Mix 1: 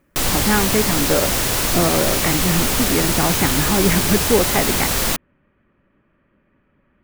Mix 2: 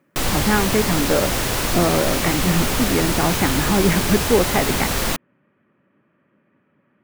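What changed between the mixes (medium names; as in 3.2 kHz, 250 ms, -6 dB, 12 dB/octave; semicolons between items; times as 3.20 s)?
speech: add high-pass 120 Hz 24 dB/octave; master: add treble shelf 4.3 kHz -6 dB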